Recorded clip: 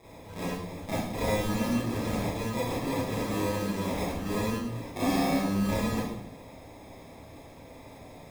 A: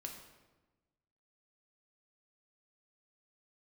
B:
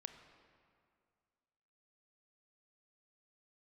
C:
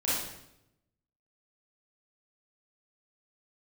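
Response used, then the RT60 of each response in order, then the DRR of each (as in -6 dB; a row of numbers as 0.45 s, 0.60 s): C; 1.2 s, 2.2 s, 0.80 s; 1.5 dB, 7.5 dB, -10.0 dB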